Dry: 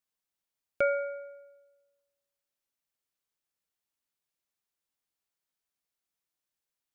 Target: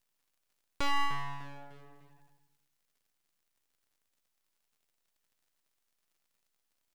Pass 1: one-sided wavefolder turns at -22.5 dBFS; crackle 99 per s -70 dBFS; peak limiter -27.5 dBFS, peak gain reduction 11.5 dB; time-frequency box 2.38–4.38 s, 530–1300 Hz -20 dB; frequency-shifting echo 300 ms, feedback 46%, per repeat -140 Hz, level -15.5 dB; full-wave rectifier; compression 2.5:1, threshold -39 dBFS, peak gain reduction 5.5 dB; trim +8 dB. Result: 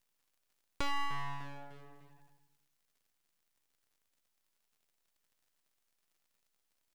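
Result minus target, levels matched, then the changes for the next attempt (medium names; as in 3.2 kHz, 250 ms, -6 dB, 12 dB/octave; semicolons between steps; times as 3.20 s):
compression: peak gain reduction +5.5 dB
remove: compression 2.5:1, threshold -39 dBFS, peak gain reduction 5.5 dB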